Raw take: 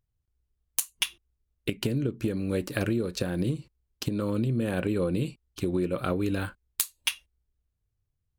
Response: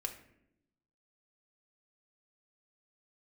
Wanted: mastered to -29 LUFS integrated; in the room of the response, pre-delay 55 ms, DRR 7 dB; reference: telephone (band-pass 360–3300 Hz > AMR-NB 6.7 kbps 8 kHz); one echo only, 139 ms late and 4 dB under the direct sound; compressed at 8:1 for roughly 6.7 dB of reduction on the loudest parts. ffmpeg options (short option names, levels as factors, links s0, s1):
-filter_complex "[0:a]acompressor=threshold=0.0355:ratio=8,aecho=1:1:139:0.631,asplit=2[s0][s1];[1:a]atrim=start_sample=2205,adelay=55[s2];[s1][s2]afir=irnorm=-1:irlink=0,volume=0.473[s3];[s0][s3]amix=inputs=2:normalize=0,highpass=360,lowpass=3300,volume=3.55" -ar 8000 -c:a libopencore_amrnb -b:a 6700